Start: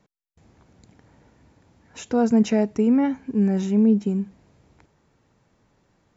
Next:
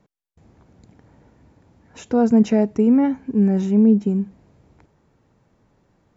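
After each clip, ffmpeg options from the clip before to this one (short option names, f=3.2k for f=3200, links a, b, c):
-af "tiltshelf=f=1.4k:g=3.5"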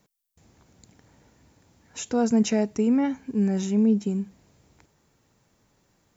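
-af "crystalizer=i=6:c=0,volume=-6.5dB"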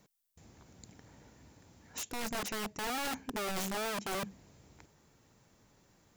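-af "areverse,acompressor=threshold=-30dB:ratio=12,areverse,aeval=exprs='(mod(37.6*val(0)+1,2)-1)/37.6':c=same"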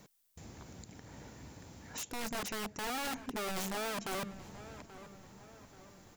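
-filter_complex "[0:a]alimiter=level_in=16.5dB:limit=-24dB:level=0:latency=1:release=181,volume=-16.5dB,asplit=2[a][b];[b]adelay=832,lowpass=f=2.2k:p=1,volume=-14dB,asplit=2[c][d];[d]adelay=832,lowpass=f=2.2k:p=1,volume=0.52,asplit=2[e][f];[f]adelay=832,lowpass=f=2.2k:p=1,volume=0.52,asplit=2[g][h];[h]adelay=832,lowpass=f=2.2k:p=1,volume=0.52,asplit=2[i][j];[j]adelay=832,lowpass=f=2.2k:p=1,volume=0.52[k];[a][c][e][g][i][k]amix=inputs=6:normalize=0,volume=7.5dB"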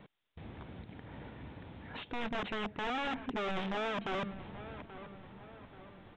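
-af "aresample=8000,aresample=44100,asoftclip=type=tanh:threshold=-31dB,volume=3.5dB"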